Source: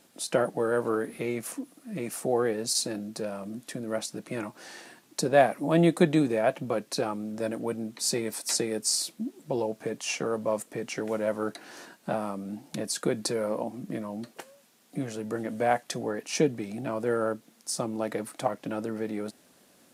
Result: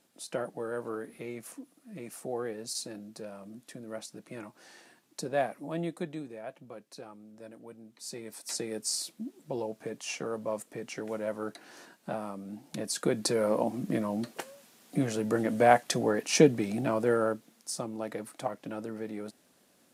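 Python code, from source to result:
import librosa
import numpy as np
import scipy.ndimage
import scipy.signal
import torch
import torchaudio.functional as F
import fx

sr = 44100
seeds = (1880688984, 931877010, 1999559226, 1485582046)

y = fx.gain(x, sr, db=fx.line((5.45, -9.0), (6.26, -17.0), (7.83, -17.0), (8.73, -5.5), (12.47, -5.5), (13.7, 4.0), (16.78, 4.0), (17.87, -5.5)))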